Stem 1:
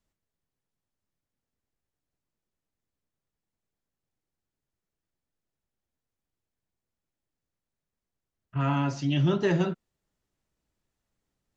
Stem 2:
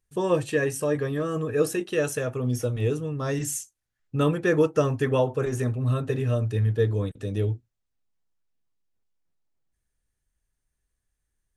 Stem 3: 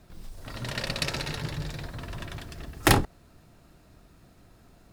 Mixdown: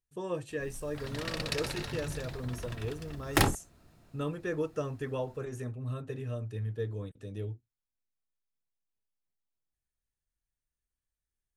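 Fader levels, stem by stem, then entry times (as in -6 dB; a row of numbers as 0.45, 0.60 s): off, -12.0 dB, -5.0 dB; off, 0.00 s, 0.50 s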